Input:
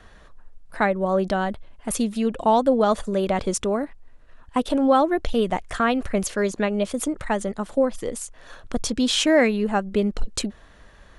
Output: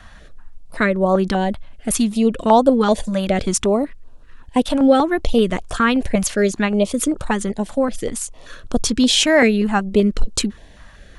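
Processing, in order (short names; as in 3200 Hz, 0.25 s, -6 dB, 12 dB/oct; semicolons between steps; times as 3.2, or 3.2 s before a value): stepped notch 5.2 Hz 410–2000 Hz; gain +7 dB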